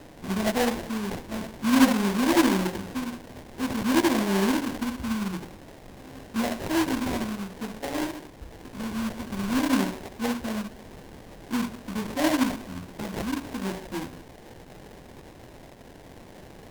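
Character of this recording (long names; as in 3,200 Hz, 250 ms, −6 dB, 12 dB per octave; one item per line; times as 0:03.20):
a quantiser's noise floor 8 bits, dither triangular
phaser sweep stages 4, 0.52 Hz, lowest notch 490–1,900 Hz
aliases and images of a low sample rate 1,300 Hz, jitter 20%
Ogg Vorbis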